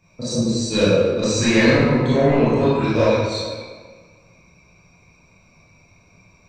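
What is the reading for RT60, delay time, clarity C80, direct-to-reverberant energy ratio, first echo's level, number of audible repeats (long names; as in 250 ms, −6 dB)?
1.6 s, no echo audible, −0.5 dB, −11.5 dB, no echo audible, no echo audible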